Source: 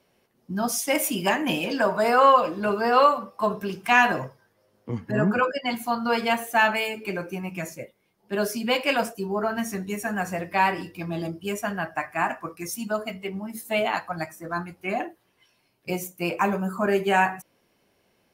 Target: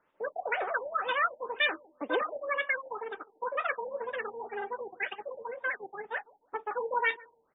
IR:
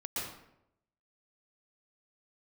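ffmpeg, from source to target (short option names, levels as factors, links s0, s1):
-filter_complex "[0:a]asetrate=107163,aresample=44100,asplit=2[s0][s1];[s1]adelay=154,lowpass=f=1400:p=1,volume=0.106,asplit=2[s2][s3];[s3]adelay=154,lowpass=f=1400:p=1,volume=0.29[s4];[s0][s2][s4]amix=inputs=3:normalize=0,afftfilt=real='re*lt(b*sr/1024,910*pow(3800/910,0.5+0.5*sin(2*PI*2*pts/sr)))':imag='im*lt(b*sr/1024,910*pow(3800/910,0.5+0.5*sin(2*PI*2*pts/sr)))':win_size=1024:overlap=0.75,volume=0.531"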